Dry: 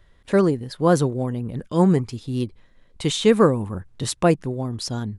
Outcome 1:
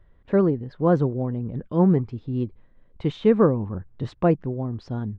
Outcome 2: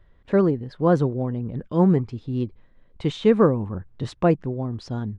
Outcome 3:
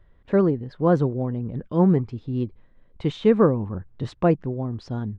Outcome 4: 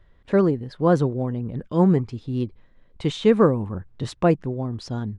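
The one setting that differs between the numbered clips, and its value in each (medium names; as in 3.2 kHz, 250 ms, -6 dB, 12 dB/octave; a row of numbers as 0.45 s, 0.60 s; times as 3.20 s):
tape spacing loss, at 10 kHz: 45 dB, 28 dB, 37 dB, 20 dB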